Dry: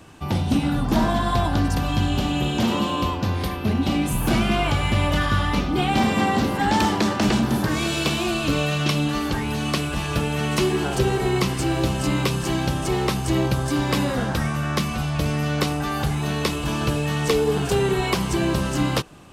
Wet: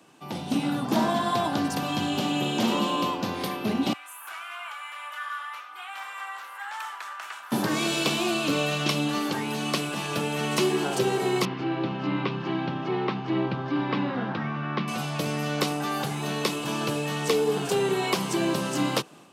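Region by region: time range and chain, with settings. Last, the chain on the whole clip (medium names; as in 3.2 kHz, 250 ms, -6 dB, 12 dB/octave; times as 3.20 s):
3.93–7.52 s: ladder high-pass 1.1 kHz, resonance 45% + peaking EQ 4.7 kHz -11 dB 1.3 oct + short-mantissa float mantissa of 6-bit
11.45–14.88 s: Gaussian low-pass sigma 2.8 samples + peaking EQ 550 Hz -7 dB 0.67 oct
whole clip: Bessel high-pass 220 Hz, order 8; peaking EQ 1.7 kHz -2.5 dB; level rider gain up to 6.5 dB; trim -7 dB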